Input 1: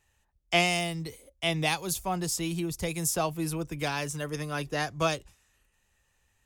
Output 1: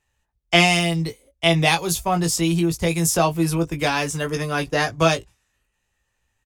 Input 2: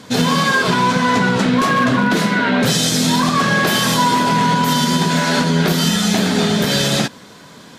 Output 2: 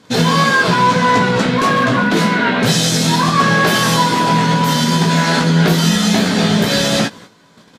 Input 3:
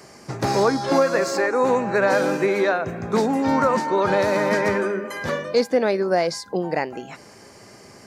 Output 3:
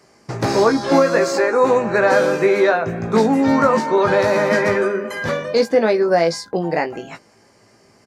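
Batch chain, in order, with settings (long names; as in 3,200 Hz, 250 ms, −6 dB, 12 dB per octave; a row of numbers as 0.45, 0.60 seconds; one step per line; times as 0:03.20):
noise gate −38 dBFS, range −11 dB
high-shelf EQ 8,700 Hz −5.5 dB
double-tracking delay 18 ms −6 dB
normalise the peak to −2 dBFS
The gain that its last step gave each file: +9.0, +1.5, +3.0 decibels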